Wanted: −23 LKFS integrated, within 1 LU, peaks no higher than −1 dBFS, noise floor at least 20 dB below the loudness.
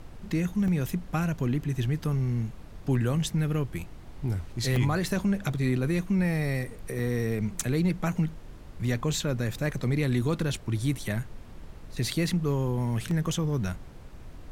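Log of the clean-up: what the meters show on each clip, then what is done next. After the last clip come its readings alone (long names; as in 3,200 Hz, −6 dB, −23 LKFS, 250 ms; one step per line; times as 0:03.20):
number of dropouts 4; longest dropout 2.1 ms; background noise floor −45 dBFS; target noise floor −49 dBFS; integrated loudness −29.0 LKFS; sample peak −12.5 dBFS; target loudness −23.0 LKFS
→ repair the gap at 0:00.68/0:04.76/0:06.99/0:13.11, 2.1 ms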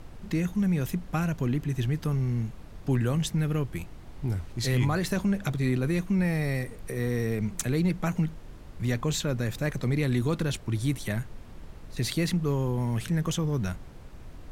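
number of dropouts 0; background noise floor −45 dBFS; target noise floor −49 dBFS
→ noise reduction from a noise print 6 dB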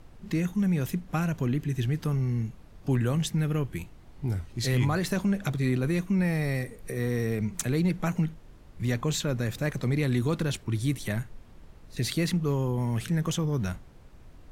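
background noise floor −50 dBFS; integrated loudness −29.0 LKFS; sample peak −13.0 dBFS; target loudness −23.0 LKFS
→ level +6 dB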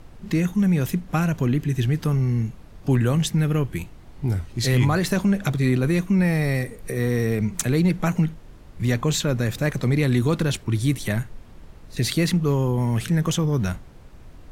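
integrated loudness −22.5 LKFS; sample peak −7.0 dBFS; background noise floor −44 dBFS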